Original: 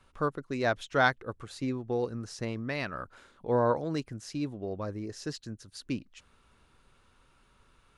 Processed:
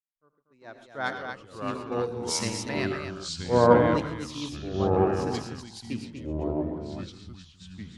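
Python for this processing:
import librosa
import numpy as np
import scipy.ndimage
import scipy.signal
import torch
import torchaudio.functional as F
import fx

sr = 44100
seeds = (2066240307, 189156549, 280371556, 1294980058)

y = fx.fade_in_head(x, sr, length_s=2.27)
y = fx.high_shelf(y, sr, hz=3200.0, db=11.0, at=(1.67, 2.48))
y = fx.echo_multitap(y, sr, ms=(83, 114, 135, 242), db=(-15.5, -10.5, -11.5, -4.0))
y = fx.echo_pitch(y, sr, ms=348, semitones=-4, count=2, db_per_echo=-3.0)
y = fx.band_widen(y, sr, depth_pct=100)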